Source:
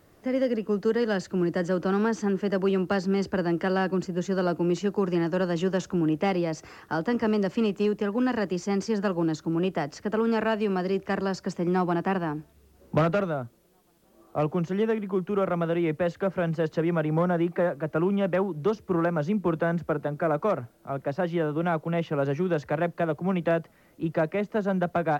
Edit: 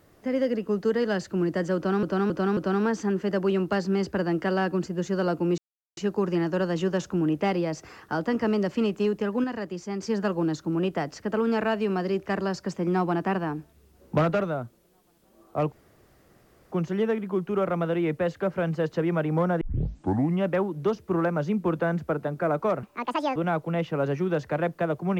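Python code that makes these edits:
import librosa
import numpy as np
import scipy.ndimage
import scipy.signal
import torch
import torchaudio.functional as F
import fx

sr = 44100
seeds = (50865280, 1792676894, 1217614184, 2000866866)

y = fx.edit(x, sr, fx.repeat(start_s=1.76, length_s=0.27, count=4),
    fx.insert_silence(at_s=4.77, length_s=0.39),
    fx.clip_gain(start_s=8.24, length_s=0.59, db=-5.5),
    fx.insert_room_tone(at_s=14.52, length_s=1.0),
    fx.tape_start(start_s=17.41, length_s=0.82),
    fx.speed_span(start_s=20.63, length_s=0.92, speed=1.74), tone=tone)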